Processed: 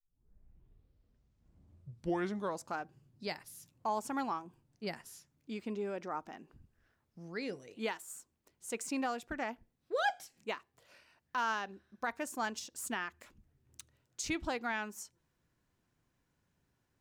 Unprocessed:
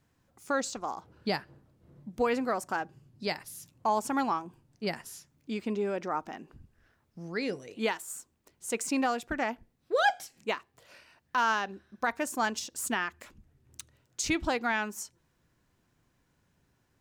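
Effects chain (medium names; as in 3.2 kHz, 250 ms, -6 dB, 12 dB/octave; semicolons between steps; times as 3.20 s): tape start-up on the opening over 2.95 s; trim -7 dB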